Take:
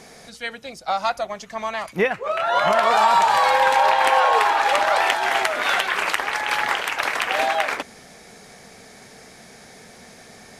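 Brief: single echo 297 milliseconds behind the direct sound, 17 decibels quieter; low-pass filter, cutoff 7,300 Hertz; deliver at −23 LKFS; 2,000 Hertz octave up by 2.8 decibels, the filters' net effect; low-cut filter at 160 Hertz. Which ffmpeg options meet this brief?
ffmpeg -i in.wav -af "highpass=160,lowpass=7300,equalizer=frequency=2000:width_type=o:gain=3.5,aecho=1:1:297:0.141,volume=-4.5dB" out.wav

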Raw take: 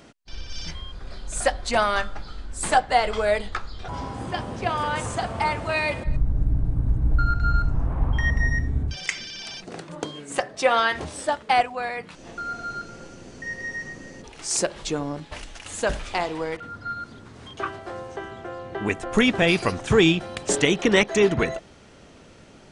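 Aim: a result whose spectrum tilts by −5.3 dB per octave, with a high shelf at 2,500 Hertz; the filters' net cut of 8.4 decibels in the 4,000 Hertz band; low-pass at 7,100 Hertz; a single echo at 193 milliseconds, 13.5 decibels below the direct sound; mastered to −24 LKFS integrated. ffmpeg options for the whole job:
ffmpeg -i in.wav -af "lowpass=7100,highshelf=frequency=2500:gain=-7.5,equalizer=frequency=4000:width_type=o:gain=-4.5,aecho=1:1:193:0.211,volume=2dB" out.wav

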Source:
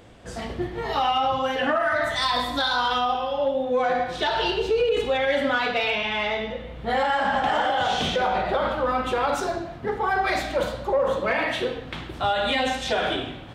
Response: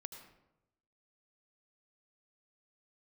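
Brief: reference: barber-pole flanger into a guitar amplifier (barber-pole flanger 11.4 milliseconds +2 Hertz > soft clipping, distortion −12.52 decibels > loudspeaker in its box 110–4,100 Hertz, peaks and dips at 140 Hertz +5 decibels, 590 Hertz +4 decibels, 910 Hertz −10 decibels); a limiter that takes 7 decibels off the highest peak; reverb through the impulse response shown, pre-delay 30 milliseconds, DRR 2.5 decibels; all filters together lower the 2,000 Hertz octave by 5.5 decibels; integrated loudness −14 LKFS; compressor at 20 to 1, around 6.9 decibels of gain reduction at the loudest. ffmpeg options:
-filter_complex "[0:a]equalizer=frequency=2000:width_type=o:gain=-7,acompressor=threshold=-26dB:ratio=20,alimiter=level_in=1.5dB:limit=-24dB:level=0:latency=1,volume=-1.5dB,asplit=2[link_01][link_02];[1:a]atrim=start_sample=2205,adelay=30[link_03];[link_02][link_03]afir=irnorm=-1:irlink=0,volume=1.5dB[link_04];[link_01][link_04]amix=inputs=2:normalize=0,asplit=2[link_05][link_06];[link_06]adelay=11.4,afreqshift=2[link_07];[link_05][link_07]amix=inputs=2:normalize=1,asoftclip=threshold=-32.5dB,highpass=110,equalizer=frequency=140:width_type=q:width=4:gain=5,equalizer=frequency=590:width_type=q:width=4:gain=4,equalizer=frequency=910:width_type=q:width=4:gain=-10,lowpass=frequency=4100:width=0.5412,lowpass=frequency=4100:width=1.3066,volume=23.5dB"

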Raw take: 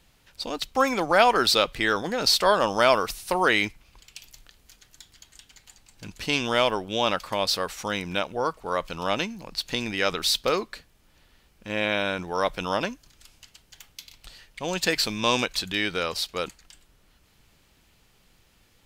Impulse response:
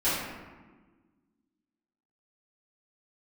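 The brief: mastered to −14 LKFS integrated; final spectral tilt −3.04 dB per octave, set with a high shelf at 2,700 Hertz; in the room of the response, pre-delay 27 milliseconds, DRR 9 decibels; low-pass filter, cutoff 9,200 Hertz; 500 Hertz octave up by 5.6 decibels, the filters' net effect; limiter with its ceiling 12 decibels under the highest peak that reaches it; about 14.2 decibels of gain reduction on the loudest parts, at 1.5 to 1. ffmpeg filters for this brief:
-filter_complex "[0:a]lowpass=9200,equalizer=frequency=500:width_type=o:gain=6.5,highshelf=frequency=2700:gain=4,acompressor=threshold=-52dB:ratio=1.5,alimiter=level_in=3.5dB:limit=-24dB:level=0:latency=1,volume=-3.5dB,asplit=2[link_01][link_02];[1:a]atrim=start_sample=2205,adelay=27[link_03];[link_02][link_03]afir=irnorm=-1:irlink=0,volume=-21.5dB[link_04];[link_01][link_04]amix=inputs=2:normalize=0,volume=25dB"

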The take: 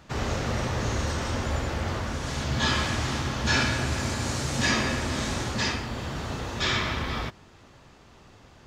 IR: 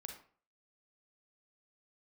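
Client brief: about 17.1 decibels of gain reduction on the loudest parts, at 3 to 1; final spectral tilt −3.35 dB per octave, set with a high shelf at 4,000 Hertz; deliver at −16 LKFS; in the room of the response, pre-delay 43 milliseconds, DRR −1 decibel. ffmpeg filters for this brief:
-filter_complex "[0:a]highshelf=frequency=4000:gain=8,acompressor=threshold=-42dB:ratio=3,asplit=2[link_01][link_02];[1:a]atrim=start_sample=2205,adelay=43[link_03];[link_02][link_03]afir=irnorm=-1:irlink=0,volume=5dB[link_04];[link_01][link_04]amix=inputs=2:normalize=0,volume=20dB"

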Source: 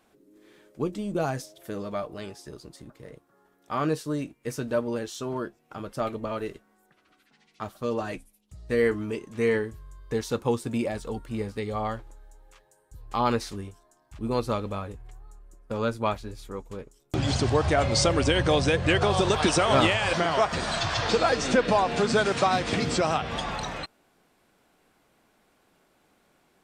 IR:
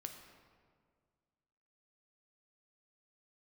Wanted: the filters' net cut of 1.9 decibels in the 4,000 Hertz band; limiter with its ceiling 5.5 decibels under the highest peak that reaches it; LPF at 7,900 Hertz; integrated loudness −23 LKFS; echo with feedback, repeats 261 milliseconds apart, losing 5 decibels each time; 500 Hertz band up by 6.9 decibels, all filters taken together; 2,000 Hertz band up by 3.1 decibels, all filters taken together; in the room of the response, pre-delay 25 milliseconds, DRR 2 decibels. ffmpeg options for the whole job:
-filter_complex "[0:a]lowpass=7900,equalizer=frequency=500:width_type=o:gain=8,equalizer=frequency=2000:width_type=o:gain=4.5,equalizer=frequency=4000:width_type=o:gain=-4,alimiter=limit=-9.5dB:level=0:latency=1,aecho=1:1:261|522|783|1044|1305|1566|1827:0.562|0.315|0.176|0.0988|0.0553|0.031|0.0173,asplit=2[link_01][link_02];[1:a]atrim=start_sample=2205,adelay=25[link_03];[link_02][link_03]afir=irnorm=-1:irlink=0,volume=1.5dB[link_04];[link_01][link_04]amix=inputs=2:normalize=0,volume=-3.5dB"

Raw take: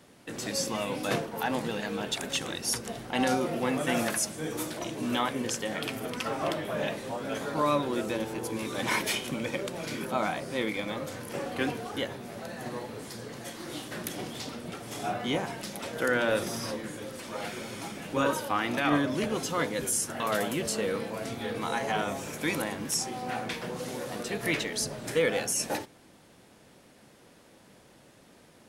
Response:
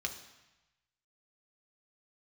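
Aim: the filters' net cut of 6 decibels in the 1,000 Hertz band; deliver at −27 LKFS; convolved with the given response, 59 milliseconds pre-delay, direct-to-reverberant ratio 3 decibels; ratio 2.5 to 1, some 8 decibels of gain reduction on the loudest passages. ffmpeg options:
-filter_complex "[0:a]equalizer=frequency=1000:width_type=o:gain=-8.5,acompressor=threshold=-35dB:ratio=2.5,asplit=2[link_01][link_02];[1:a]atrim=start_sample=2205,adelay=59[link_03];[link_02][link_03]afir=irnorm=-1:irlink=0,volume=-5dB[link_04];[link_01][link_04]amix=inputs=2:normalize=0,volume=9dB"

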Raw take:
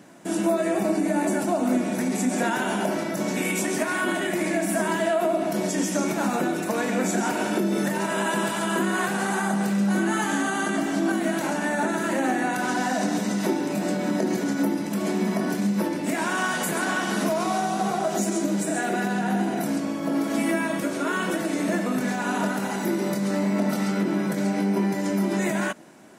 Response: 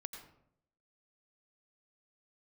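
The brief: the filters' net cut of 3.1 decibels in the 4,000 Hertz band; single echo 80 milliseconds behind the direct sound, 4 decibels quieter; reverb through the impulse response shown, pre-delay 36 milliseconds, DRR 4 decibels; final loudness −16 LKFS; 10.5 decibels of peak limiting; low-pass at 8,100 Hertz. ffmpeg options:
-filter_complex "[0:a]lowpass=8100,equalizer=frequency=4000:width_type=o:gain=-4,alimiter=limit=-22.5dB:level=0:latency=1,aecho=1:1:80:0.631,asplit=2[link_01][link_02];[1:a]atrim=start_sample=2205,adelay=36[link_03];[link_02][link_03]afir=irnorm=-1:irlink=0,volume=-1dB[link_04];[link_01][link_04]amix=inputs=2:normalize=0,volume=10.5dB"

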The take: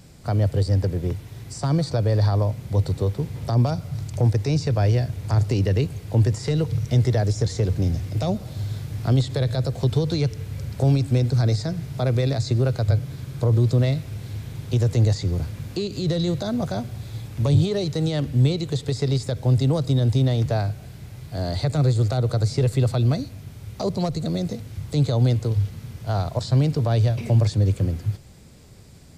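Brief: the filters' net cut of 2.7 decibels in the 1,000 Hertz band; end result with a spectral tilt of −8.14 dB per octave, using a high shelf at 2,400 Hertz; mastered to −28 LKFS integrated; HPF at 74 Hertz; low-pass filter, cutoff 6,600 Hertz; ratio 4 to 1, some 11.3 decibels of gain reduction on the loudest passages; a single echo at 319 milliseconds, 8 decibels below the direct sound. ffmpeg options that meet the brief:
ffmpeg -i in.wav -af "highpass=74,lowpass=6600,equalizer=frequency=1000:width_type=o:gain=-3.5,highshelf=frequency=2400:gain=-5,acompressor=threshold=-28dB:ratio=4,aecho=1:1:319:0.398,volume=3dB" out.wav

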